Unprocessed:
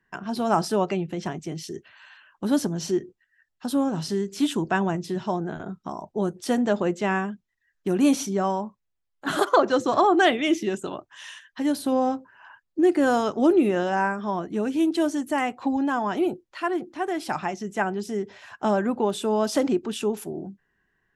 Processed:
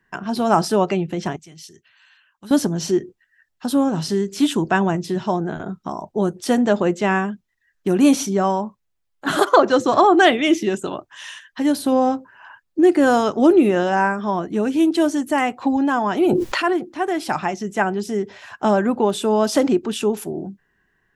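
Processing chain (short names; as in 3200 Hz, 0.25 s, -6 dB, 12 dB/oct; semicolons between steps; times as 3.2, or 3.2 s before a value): 1.36–2.51 passive tone stack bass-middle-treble 5-5-5; 16.16–16.73 sustainer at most 22 dB/s; gain +5.5 dB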